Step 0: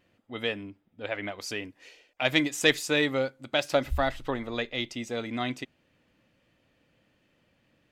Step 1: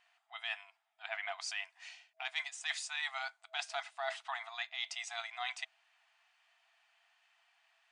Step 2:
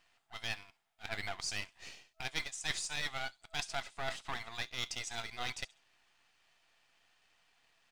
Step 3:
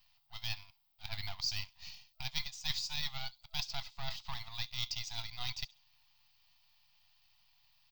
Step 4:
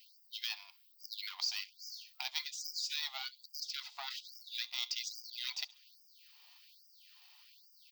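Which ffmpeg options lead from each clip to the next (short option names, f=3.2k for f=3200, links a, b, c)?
-af "afftfilt=real='re*between(b*sr/4096,650,10000)':imag='im*between(b*sr/4096,650,10000)':win_size=4096:overlap=0.75,areverse,acompressor=threshold=-37dB:ratio=6,areverse,volume=1dB"
-filter_complex "[0:a]acrossover=split=4300[a][b];[a]aeval=exprs='max(val(0),0)':c=same[c];[b]aecho=1:1:67|134|201:0.224|0.0694|0.0215[d];[c][d]amix=inputs=2:normalize=0,volume=4dB"
-af "firequalizer=gain_entry='entry(130,0);entry(320,-30);entry(900,-6);entry(1500,-17);entry(2500,-8);entry(4700,2);entry(9000,-26);entry(16000,15)':delay=0.05:min_phase=1,volume=5dB"
-af "acompressor=threshold=-47dB:ratio=2.5,afftfilt=real='re*gte(b*sr/1024,570*pow(4800/570,0.5+0.5*sin(2*PI*1.2*pts/sr)))':imag='im*gte(b*sr/1024,570*pow(4800/570,0.5+0.5*sin(2*PI*1.2*pts/sr)))':win_size=1024:overlap=0.75,volume=10dB"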